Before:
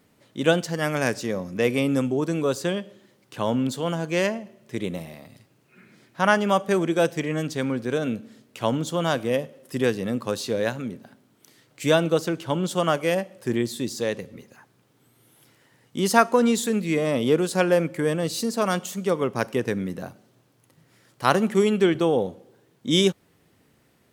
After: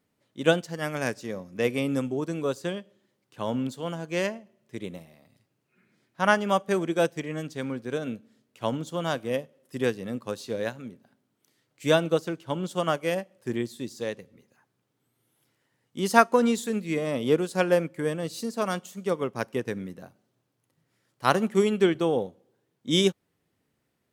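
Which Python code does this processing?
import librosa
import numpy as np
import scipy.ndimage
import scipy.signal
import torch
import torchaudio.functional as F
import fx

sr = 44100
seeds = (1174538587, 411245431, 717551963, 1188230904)

y = fx.upward_expand(x, sr, threshold_db=-40.0, expansion=1.5)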